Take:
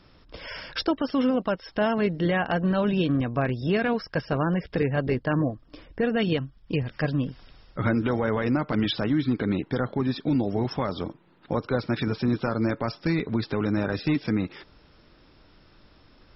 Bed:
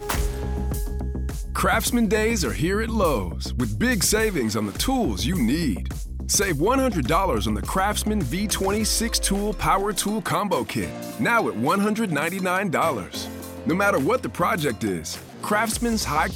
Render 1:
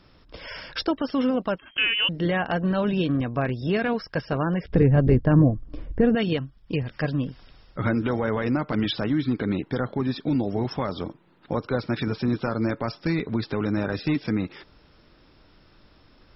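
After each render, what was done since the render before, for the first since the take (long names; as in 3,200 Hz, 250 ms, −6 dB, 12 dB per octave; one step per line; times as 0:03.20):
0:01.58–0:02.09: voice inversion scrambler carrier 3,200 Hz
0:04.68–0:06.15: spectral tilt −3.5 dB per octave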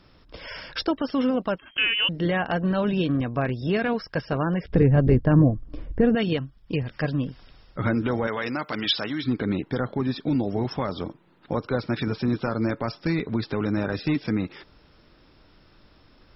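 0:08.27–0:09.24: spectral tilt +3.5 dB per octave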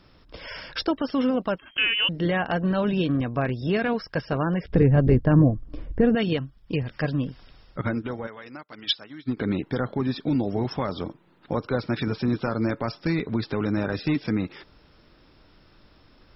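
0:07.81–0:09.37: expander for the loud parts 2.5 to 1, over −41 dBFS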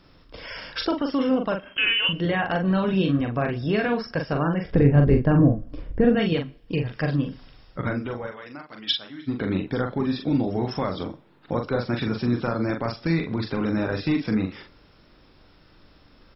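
double-tracking delay 42 ms −5 dB
coupled-rooms reverb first 0.55 s, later 1.7 s, from −23 dB, DRR 17 dB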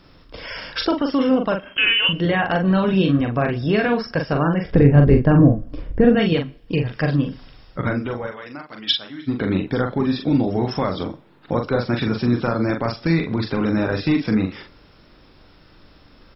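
level +4.5 dB
brickwall limiter −1 dBFS, peak gain reduction 0.5 dB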